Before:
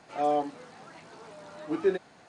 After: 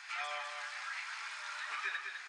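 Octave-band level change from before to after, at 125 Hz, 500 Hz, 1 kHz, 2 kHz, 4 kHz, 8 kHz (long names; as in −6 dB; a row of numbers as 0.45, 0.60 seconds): below −40 dB, −25.5 dB, −10.5 dB, +8.5 dB, +7.0 dB, +6.0 dB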